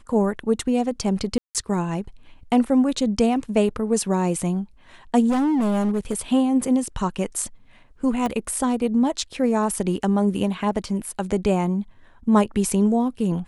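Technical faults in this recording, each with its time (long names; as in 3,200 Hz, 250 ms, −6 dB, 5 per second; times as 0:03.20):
0:01.38–0:01.55: drop-out 168 ms
0:05.29–0:06.14: clipping −18 dBFS
0:08.26: click −13 dBFS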